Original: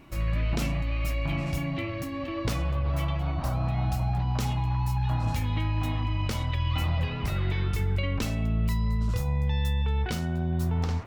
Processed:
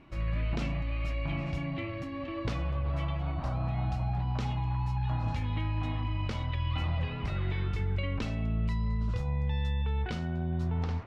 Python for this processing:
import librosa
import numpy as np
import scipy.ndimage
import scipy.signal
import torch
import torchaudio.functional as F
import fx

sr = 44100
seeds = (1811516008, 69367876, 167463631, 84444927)

y = scipy.signal.sosfilt(scipy.signal.butter(2, 3900.0, 'lowpass', fs=sr, output='sos'), x)
y = F.gain(torch.from_numpy(y), -4.0).numpy()